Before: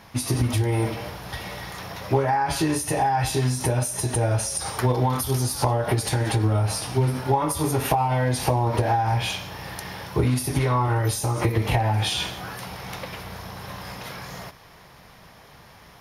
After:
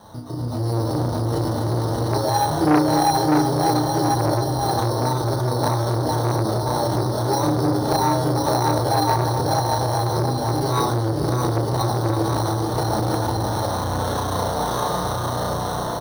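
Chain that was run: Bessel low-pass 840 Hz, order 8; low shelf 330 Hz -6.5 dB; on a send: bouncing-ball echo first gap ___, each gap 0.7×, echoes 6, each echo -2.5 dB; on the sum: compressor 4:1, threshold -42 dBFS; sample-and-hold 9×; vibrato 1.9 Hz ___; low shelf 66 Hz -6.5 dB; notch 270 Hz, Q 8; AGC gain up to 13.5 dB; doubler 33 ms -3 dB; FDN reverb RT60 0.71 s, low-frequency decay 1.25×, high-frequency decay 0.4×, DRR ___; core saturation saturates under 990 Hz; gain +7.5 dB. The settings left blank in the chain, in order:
0.61 s, 6.6 cents, 5.5 dB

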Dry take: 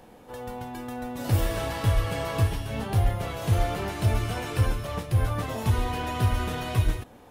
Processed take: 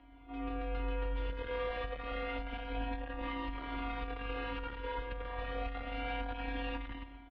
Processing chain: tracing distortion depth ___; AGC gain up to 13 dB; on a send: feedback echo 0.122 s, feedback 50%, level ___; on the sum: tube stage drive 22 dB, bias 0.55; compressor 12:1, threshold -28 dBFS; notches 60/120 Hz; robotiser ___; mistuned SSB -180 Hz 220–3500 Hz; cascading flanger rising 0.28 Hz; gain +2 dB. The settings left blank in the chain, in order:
0.24 ms, -21 dB, 227 Hz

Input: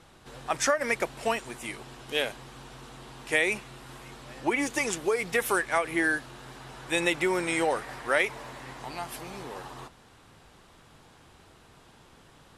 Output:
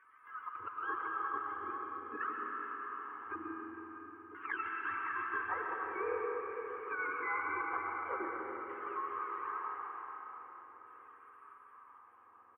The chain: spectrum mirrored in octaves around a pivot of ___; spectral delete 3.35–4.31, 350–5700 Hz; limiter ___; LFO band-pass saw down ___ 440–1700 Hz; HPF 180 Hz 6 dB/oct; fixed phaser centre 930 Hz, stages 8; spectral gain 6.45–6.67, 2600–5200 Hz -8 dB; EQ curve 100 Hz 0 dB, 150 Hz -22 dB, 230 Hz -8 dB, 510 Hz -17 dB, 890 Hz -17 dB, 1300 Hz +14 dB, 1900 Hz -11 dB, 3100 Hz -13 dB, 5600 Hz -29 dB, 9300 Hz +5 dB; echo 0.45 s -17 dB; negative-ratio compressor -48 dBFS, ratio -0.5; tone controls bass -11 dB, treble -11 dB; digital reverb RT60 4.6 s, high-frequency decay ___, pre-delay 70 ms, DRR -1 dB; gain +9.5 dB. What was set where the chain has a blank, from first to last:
870 Hz, -18 dBFS, 0.46 Hz, 0.9×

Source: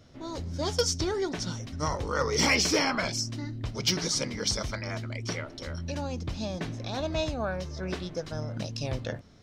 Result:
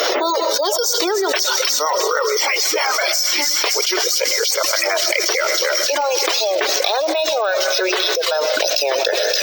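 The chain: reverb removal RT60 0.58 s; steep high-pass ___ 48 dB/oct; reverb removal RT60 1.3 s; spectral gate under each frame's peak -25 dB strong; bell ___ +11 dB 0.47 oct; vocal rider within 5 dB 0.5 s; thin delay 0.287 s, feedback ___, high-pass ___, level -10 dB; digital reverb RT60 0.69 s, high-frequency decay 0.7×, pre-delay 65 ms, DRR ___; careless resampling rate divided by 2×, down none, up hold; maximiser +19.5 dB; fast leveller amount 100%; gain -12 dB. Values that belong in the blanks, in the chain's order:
390 Hz, 13000 Hz, 81%, 3400 Hz, 14.5 dB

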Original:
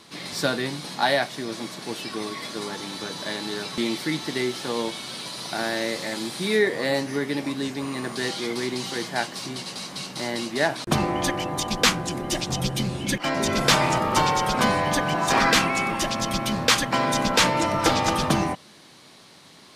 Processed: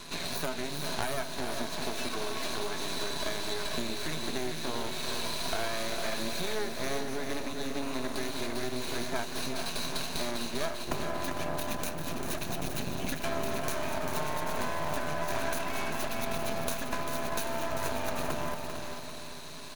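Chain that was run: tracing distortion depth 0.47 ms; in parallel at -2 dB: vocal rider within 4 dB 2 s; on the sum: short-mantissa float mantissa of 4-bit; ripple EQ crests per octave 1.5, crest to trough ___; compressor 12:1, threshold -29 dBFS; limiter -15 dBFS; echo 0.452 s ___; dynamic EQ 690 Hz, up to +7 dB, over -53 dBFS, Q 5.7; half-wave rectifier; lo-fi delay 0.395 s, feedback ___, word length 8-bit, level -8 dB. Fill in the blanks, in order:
11 dB, -8.5 dB, 55%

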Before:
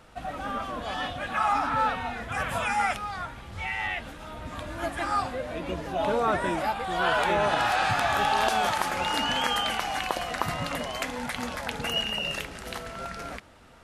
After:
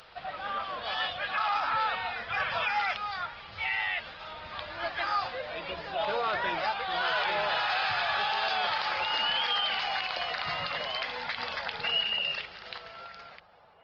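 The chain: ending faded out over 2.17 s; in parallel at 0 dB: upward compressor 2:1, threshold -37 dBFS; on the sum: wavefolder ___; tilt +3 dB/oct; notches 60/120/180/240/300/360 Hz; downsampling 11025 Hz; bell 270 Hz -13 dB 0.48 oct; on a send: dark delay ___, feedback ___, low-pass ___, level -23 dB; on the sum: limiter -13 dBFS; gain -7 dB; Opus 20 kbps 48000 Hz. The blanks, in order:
-12 dBFS, 0.925 s, 75%, 880 Hz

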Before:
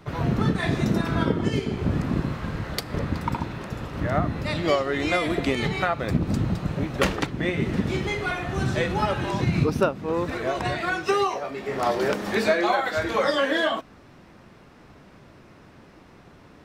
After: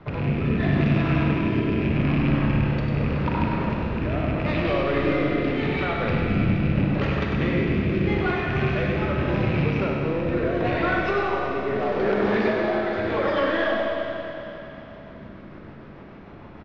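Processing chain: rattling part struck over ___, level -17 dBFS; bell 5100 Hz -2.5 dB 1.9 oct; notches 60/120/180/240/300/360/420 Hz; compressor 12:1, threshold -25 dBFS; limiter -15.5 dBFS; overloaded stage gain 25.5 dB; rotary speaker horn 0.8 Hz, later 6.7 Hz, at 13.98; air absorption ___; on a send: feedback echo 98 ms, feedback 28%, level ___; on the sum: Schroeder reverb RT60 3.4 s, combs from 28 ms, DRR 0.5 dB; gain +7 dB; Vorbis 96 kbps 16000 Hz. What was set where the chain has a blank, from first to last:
-26 dBFS, 300 m, -6 dB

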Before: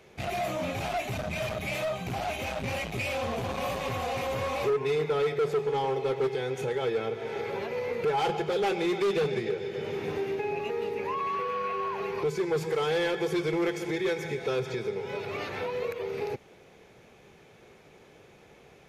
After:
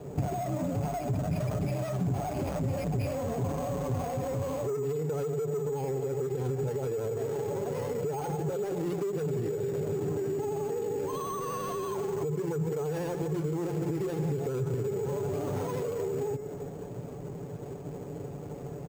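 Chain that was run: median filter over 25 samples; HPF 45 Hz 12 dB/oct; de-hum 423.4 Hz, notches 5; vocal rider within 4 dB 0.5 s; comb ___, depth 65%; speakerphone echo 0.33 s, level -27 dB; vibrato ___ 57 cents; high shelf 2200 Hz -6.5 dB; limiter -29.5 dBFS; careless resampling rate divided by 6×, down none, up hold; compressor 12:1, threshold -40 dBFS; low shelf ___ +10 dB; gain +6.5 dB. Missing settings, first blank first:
7 ms, 12 Hz, 400 Hz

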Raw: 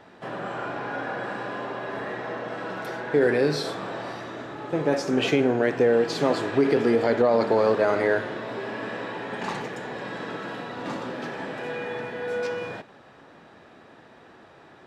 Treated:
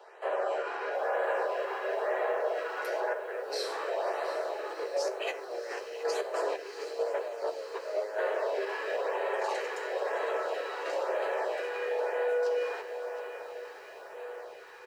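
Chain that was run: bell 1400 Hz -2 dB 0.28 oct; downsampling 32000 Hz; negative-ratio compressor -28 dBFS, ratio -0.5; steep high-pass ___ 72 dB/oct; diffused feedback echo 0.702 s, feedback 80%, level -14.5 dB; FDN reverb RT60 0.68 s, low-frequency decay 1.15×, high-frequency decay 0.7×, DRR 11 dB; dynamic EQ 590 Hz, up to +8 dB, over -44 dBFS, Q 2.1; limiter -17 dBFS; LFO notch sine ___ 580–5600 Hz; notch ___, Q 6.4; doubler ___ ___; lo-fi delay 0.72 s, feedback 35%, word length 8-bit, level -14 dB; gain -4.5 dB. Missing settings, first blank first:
380 Hz, 1 Hz, 3500 Hz, 13 ms, -10.5 dB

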